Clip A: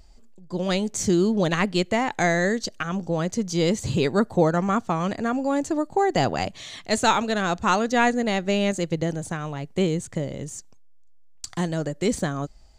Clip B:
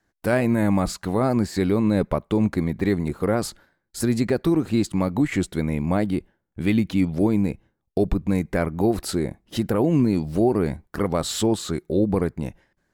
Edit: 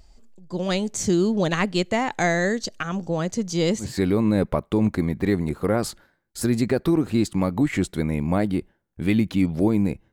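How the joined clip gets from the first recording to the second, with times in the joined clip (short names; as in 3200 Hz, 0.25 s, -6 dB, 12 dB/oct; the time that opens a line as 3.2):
clip A
3.86 switch to clip B from 1.45 s, crossfade 0.16 s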